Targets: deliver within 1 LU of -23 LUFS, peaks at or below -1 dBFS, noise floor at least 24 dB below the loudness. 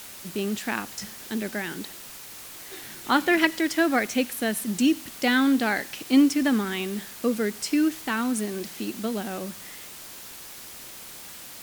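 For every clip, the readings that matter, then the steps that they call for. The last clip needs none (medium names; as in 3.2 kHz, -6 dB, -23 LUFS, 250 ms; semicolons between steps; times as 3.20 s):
noise floor -42 dBFS; noise floor target -50 dBFS; loudness -25.5 LUFS; peak level -5.5 dBFS; loudness target -23.0 LUFS
-> noise reduction 8 dB, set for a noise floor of -42 dBFS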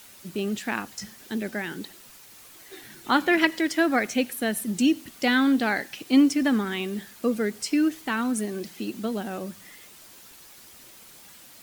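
noise floor -49 dBFS; noise floor target -50 dBFS
-> noise reduction 6 dB, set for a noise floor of -49 dBFS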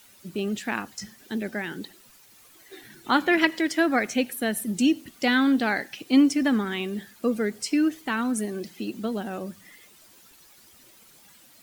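noise floor -54 dBFS; loudness -25.5 LUFS; peak level -5.5 dBFS; loudness target -23.0 LUFS
-> trim +2.5 dB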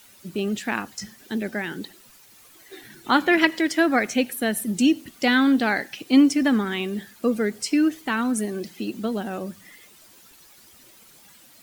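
loudness -23.0 LUFS; peak level -3.0 dBFS; noise floor -52 dBFS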